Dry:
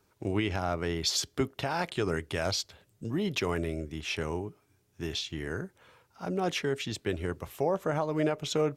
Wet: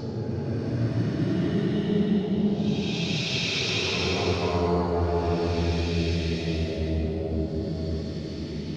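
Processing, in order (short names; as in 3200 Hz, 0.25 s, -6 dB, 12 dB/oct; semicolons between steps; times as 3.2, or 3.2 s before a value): reverse delay 0.292 s, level -11.5 dB; tone controls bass +8 dB, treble +5 dB; swung echo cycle 0.924 s, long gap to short 3:1, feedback 45%, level -12.5 dB; LFO low-pass square 4.2 Hz 790–4500 Hz; Paulstretch 9.8×, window 0.25 s, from 3.01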